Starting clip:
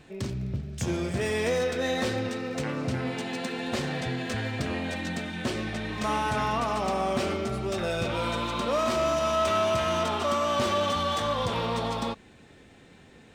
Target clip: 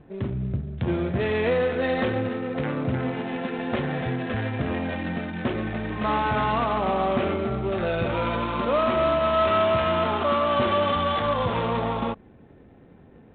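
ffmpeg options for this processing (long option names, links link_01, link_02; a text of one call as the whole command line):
ffmpeg -i in.wav -af "adynamicsmooth=sensitivity=4.5:basefreq=940,volume=4dB" -ar 8000 -c:a adpcm_ima_wav out.wav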